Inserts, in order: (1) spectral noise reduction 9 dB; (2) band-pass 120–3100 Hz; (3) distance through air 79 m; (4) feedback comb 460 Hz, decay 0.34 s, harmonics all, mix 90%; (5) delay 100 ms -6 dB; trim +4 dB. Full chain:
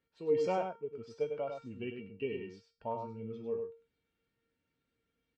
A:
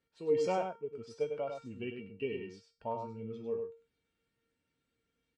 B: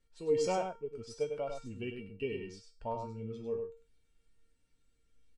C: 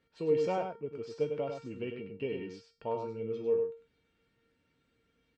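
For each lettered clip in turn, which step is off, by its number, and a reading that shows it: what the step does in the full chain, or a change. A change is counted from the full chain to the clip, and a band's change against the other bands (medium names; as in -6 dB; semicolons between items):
3, 4 kHz band +2.0 dB; 2, 4 kHz band +5.0 dB; 1, 1 kHz band -2.5 dB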